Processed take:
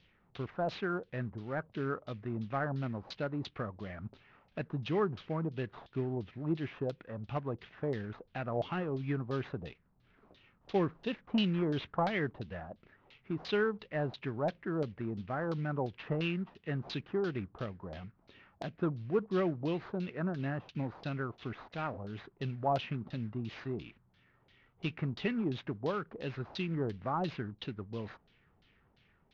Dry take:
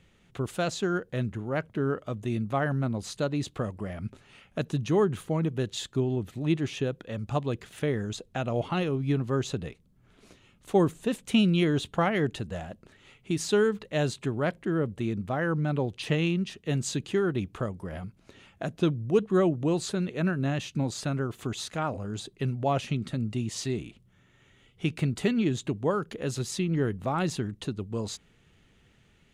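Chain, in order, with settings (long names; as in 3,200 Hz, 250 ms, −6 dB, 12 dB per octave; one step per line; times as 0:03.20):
variable-slope delta modulation 32 kbit/s
auto-filter low-pass saw down 2.9 Hz 680–4,200 Hz
level −8 dB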